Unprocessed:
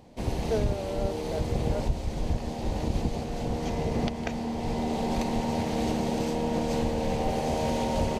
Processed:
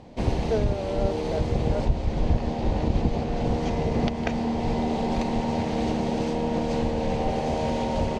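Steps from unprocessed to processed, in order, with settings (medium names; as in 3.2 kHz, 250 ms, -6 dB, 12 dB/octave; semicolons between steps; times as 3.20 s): 1.85–3.45 s: treble shelf 6.1 kHz -8 dB; gain riding 0.5 s; distance through air 80 m; trim +3.5 dB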